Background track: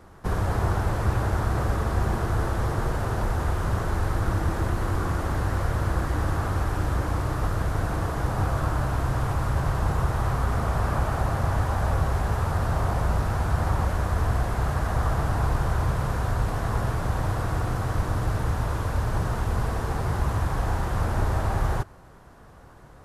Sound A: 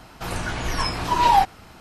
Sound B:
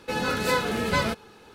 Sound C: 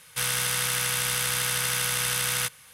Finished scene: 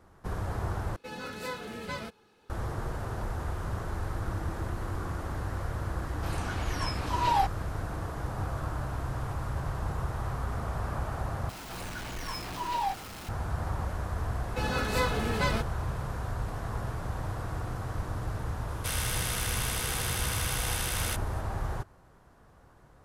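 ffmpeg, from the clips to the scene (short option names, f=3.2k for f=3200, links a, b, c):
-filter_complex "[2:a]asplit=2[a][b];[1:a]asplit=2[c][d];[0:a]volume=-8.5dB[e];[d]aeval=exprs='val(0)+0.5*0.0841*sgn(val(0))':c=same[f];[e]asplit=3[g][h][i];[g]atrim=end=0.964[j];[a]atrim=end=1.54,asetpts=PTS-STARTPTS,volume=-13dB[k];[h]atrim=start=2.496:end=11.494[l];[f]atrim=end=1.8,asetpts=PTS-STARTPTS,volume=-16dB[m];[i]atrim=start=13.286[n];[c]atrim=end=1.8,asetpts=PTS-STARTPTS,volume=-9.5dB,afade=t=in:d=0.004:c=hsin,afade=t=out:st=1.796:d=0.004:c=hsin,adelay=6020[o];[b]atrim=end=1.54,asetpts=PTS-STARTPTS,volume=-5dB,afade=t=in:d=0.004:c=hsin,afade=t=out:st=1.536:d=0.004:c=hsin,adelay=14480[p];[3:a]atrim=end=2.73,asetpts=PTS-STARTPTS,volume=-7dB,afade=t=in:d=0.004:c=hsin,afade=t=out:st=2.726:d=0.004:c=hsin,adelay=18680[q];[j][k]acrossfade=d=0.004:c1=hsin:c2=hsin[r];[r][l]acrossfade=d=0.004:c1=hsin:c2=hsin[s];[s][m]acrossfade=d=0.004:c1=hsin:c2=hsin[t];[t][n]acrossfade=d=0.004:c1=hsin:c2=hsin[u];[u][o][p][q]amix=inputs=4:normalize=0"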